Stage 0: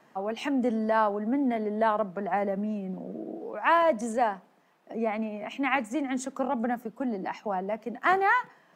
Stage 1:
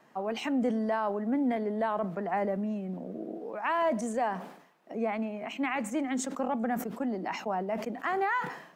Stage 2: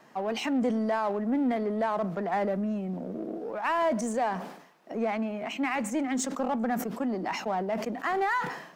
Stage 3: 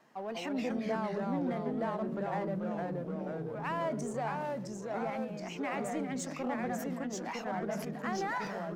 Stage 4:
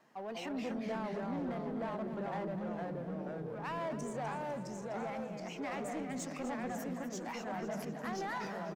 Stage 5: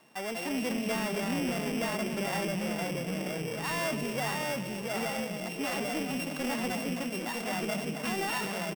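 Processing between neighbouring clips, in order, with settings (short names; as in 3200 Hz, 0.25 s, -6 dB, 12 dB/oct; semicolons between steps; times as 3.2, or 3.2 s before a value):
limiter -19 dBFS, peak gain reduction 8 dB; sustainer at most 84 dB/s; gain -1.5 dB
bell 5300 Hz +3.5 dB 0.77 oct; in parallel at -3 dB: soft clip -37.5 dBFS, distortion -6 dB
echoes that change speed 0.173 s, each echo -2 st, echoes 3; ending taper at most 140 dB/s; gain -8.5 dB
soft clip -29.5 dBFS, distortion -18 dB; on a send: feedback echo 0.25 s, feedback 55%, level -12 dB; on the sum: gain -2.5 dB
sample sorter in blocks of 16 samples; gain +6.5 dB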